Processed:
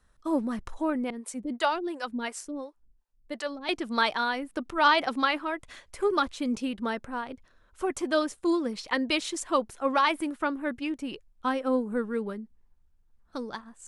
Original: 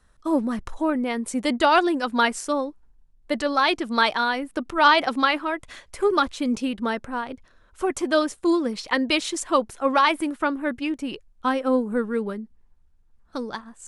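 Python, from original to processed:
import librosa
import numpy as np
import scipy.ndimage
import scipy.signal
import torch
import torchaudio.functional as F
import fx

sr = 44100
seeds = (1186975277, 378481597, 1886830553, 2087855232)

y = fx.harmonic_tremolo(x, sr, hz=2.8, depth_pct=100, crossover_hz=410.0, at=(1.1, 3.69))
y = y * librosa.db_to_amplitude(-5.0)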